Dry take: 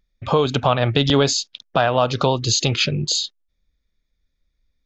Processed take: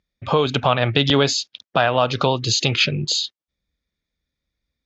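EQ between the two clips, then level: high-pass 72 Hz; low-pass 6.9 kHz 12 dB/octave; dynamic bell 2.3 kHz, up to +5 dB, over -34 dBFS, Q 0.96; -1.0 dB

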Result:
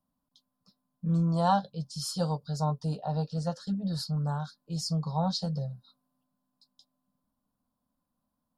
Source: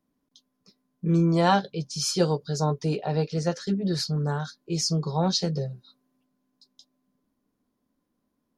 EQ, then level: dynamic bell 2 kHz, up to -5 dB, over -44 dBFS, Q 0.93; peaking EQ 6.2 kHz -11 dB 0.34 oct; static phaser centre 910 Hz, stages 4; -1.0 dB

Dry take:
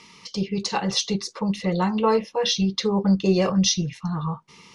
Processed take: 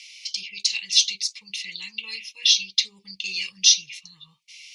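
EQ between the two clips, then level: elliptic high-pass 2.3 kHz, stop band 40 dB; treble shelf 6.9 kHz -4 dB; +8.5 dB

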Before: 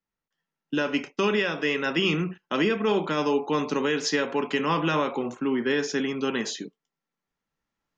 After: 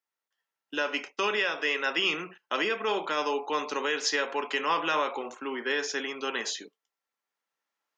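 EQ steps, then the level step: high-pass 560 Hz 12 dB/octave; 0.0 dB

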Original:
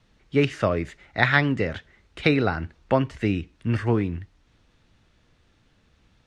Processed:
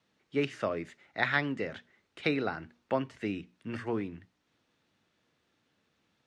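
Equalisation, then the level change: high-pass 180 Hz 12 dB/octave; hum notches 60/120/180/240 Hz; -8.5 dB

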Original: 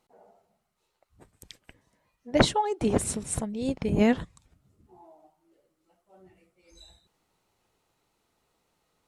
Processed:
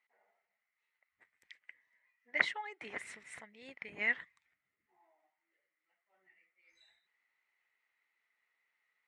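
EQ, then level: band-pass filter 2 kHz, Q 8.9; +8.0 dB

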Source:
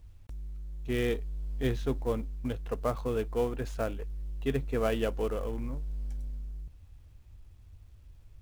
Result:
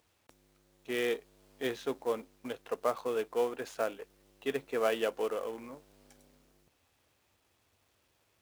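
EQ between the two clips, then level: high-pass 410 Hz 12 dB/octave; +1.5 dB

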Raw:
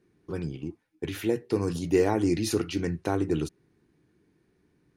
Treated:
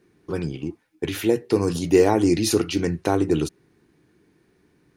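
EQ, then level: bass shelf 280 Hz -5 dB; dynamic bell 1.7 kHz, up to -4 dB, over -44 dBFS, Q 1.2; +8.5 dB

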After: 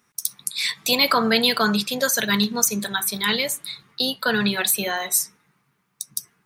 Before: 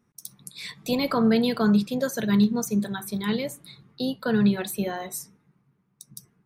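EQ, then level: tilt shelf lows -10 dB, about 680 Hz; +4.5 dB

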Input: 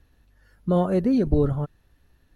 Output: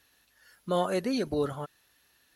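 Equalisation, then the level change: high-pass 760 Hz 6 dB/octave; treble shelf 2.1 kHz +11 dB; 0.0 dB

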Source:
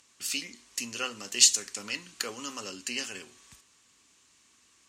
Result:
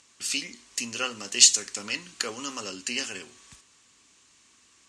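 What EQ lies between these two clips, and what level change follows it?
low-pass 10 kHz 24 dB/octave; +3.5 dB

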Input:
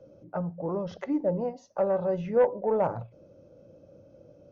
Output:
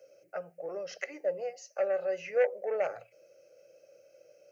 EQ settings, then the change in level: high-pass 490 Hz 12 dB/octave; resonant high shelf 1.8 kHz +13.5 dB, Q 1.5; static phaser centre 960 Hz, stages 6; 0.0 dB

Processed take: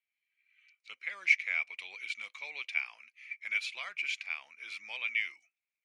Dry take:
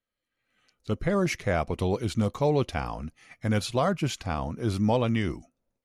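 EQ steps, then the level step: resonant high-pass 2.3 kHz, resonance Q 11; distance through air 62 m; -7.5 dB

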